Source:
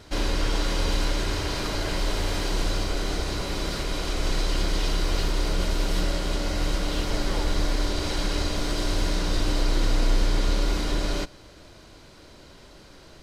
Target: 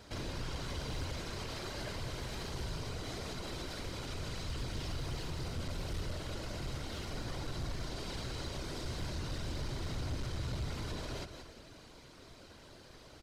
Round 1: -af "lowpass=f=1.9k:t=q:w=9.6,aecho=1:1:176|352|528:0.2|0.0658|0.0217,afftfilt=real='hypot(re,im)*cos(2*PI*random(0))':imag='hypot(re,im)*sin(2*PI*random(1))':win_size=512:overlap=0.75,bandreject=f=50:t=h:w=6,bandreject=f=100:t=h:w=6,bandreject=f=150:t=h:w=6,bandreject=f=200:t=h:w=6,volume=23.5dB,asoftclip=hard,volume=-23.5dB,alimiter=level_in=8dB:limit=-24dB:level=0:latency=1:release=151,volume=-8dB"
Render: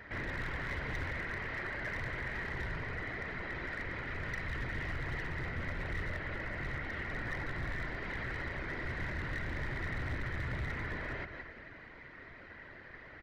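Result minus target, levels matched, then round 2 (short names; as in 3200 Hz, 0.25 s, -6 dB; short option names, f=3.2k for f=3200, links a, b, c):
2000 Hz band +9.5 dB
-af "aecho=1:1:176|352|528:0.2|0.0658|0.0217,afftfilt=real='hypot(re,im)*cos(2*PI*random(0))':imag='hypot(re,im)*sin(2*PI*random(1))':win_size=512:overlap=0.75,bandreject=f=50:t=h:w=6,bandreject=f=100:t=h:w=6,bandreject=f=150:t=h:w=6,bandreject=f=200:t=h:w=6,volume=23.5dB,asoftclip=hard,volume=-23.5dB,alimiter=level_in=8dB:limit=-24dB:level=0:latency=1:release=151,volume=-8dB"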